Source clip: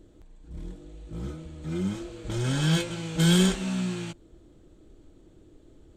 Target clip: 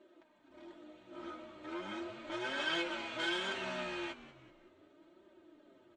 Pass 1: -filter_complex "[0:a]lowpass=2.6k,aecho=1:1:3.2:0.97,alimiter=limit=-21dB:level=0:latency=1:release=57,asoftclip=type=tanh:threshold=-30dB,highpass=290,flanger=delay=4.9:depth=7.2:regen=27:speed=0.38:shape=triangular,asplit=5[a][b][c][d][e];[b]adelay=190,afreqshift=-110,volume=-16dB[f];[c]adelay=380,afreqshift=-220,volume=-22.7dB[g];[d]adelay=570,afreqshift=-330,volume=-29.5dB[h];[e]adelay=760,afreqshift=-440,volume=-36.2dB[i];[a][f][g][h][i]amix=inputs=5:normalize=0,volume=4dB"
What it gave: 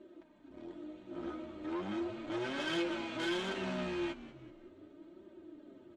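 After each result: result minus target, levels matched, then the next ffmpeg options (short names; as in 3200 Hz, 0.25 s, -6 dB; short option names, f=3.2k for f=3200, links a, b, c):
soft clip: distortion +10 dB; 250 Hz band +6.0 dB
-filter_complex "[0:a]lowpass=2.6k,aecho=1:1:3.2:0.97,alimiter=limit=-21dB:level=0:latency=1:release=57,asoftclip=type=tanh:threshold=-22dB,highpass=290,flanger=delay=4.9:depth=7.2:regen=27:speed=0.38:shape=triangular,asplit=5[a][b][c][d][e];[b]adelay=190,afreqshift=-110,volume=-16dB[f];[c]adelay=380,afreqshift=-220,volume=-22.7dB[g];[d]adelay=570,afreqshift=-330,volume=-29.5dB[h];[e]adelay=760,afreqshift=-440,volume=-36.2dB[i];[a][f][g][h][i]amix=inputs=5:normalize=0,volume=4dB"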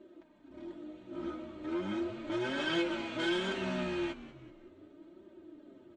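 250 Hz band +6.0 dB
-filter_complex "[0:a]lowpass=2.6k,aecho=1:1:3.2:0.97,alimiter=limit=-21dB:level=0:latency=1:release=57,asoftclip=type=tanh:threshold=-22dB,highpass=610,flanger=delay=4.9:depth=7.2:regen=27:speed=0.38:shape=triangular,asplit=5[a][b][c][d][e];[b]adelay=190,afreqshift=-110,volume=-16dB[f];[c]adelay=380,afreqshift=-220,volume=-22.7dB[g];[d]adelay=570,afreqshift=-330,volume=-29.5dB[h];[e]adelay=760,afreqshift=-440,volume=-36.2dB[i];[a][f][g][h][i]amix=inputs=5:normalize=0,volume=4dB"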